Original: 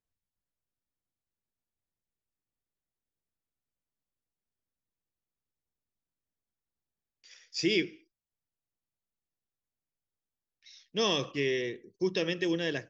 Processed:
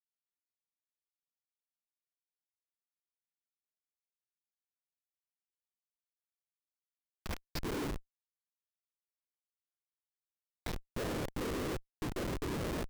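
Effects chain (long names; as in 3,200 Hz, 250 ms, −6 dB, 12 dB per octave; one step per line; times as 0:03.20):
treble cut that deepens with the level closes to 780 Hz, closed at −28 dBFS
reversed playback
downward compressor 10 to 1, threshold −43 dBFS, peak gain reduction 19 dB
reversed playback
random phases in short frames
comparator with hysteresis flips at −48.5 dBFS
level +17 dB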